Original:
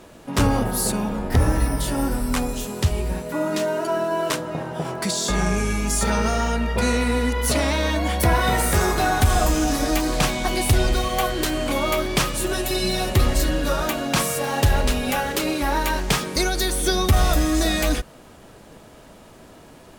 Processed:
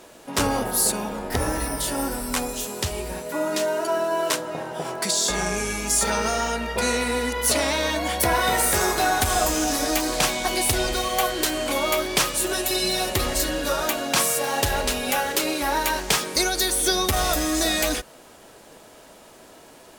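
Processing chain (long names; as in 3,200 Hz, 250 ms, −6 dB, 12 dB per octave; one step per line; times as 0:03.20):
bass and treble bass −11 dB, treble +4 dB
notch filter 1,200 Hz, Q 24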